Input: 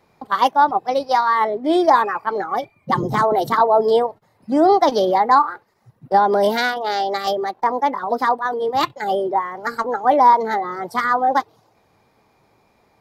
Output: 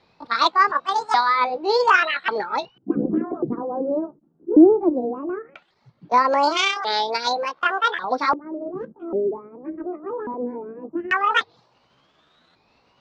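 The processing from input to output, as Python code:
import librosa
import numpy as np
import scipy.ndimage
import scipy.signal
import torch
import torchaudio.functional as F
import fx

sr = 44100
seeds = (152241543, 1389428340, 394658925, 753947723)

y = fx.pitch_ramps(x, sr, semitones=9.5, every_ms=1141)
y = fx.filter_lfo_lowpass(y, sr, shape='square', hz=0.18, low_hz=330.0, high_hz=4100.0, q=3.3)
y = F.gain(torch.from_numpy(y), -2.0).numpy()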